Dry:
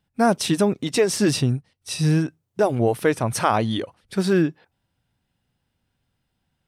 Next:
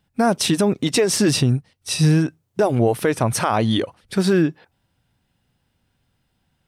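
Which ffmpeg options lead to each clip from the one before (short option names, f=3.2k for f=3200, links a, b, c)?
-af "alimiter=limit=-13.5dB:level=0:latency=1:release=134,volume=5.5dB"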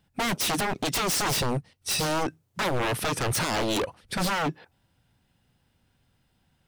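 -af "aeval=exprs='0.0891*(abs(mod(val(0)/0.0891+3,4)-2)-1)':c=same"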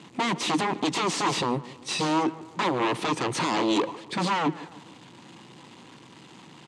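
-filter_complex "[0:a]aeval=exprs='val(0)+0.5*0.00944*sgn(val(0))':c=same,highpass=f=150:w=0.5412,highpass=f=150:w=1.3066,equalizer=f=320:t=q:w=4:g=7,equalizer=f=630:t=q:w=4:g=-5,equalizer=f=1k:t=q:w=4:g=7,equalizer=f=1.5k:t=q:w=4:g=-6,equalizer=f=5.4k:t=q:w=4:g=-7,lowpass=f=7.2k:w=0.5412,lowpass=f=7.2k:w=1.3066,asplit=2[a][b];[b]adelay=148,lowpass=f=2.2k:p=1,volume=-17.5dB,asplit=2[c][d];[d]adelay=148,lowpass=f=2.2k:p=1,volume=0.49,asplit=2[e][f];[f]adelay=148,lowpass=f=2.2k:p=1,volume=0.49,asplit=2[g][h];[h]adelay=148,lowpass=f=2.2k:p=1,volume=0.49[i];[a][c][e][g][i]amix=inputs=5:normalize=0"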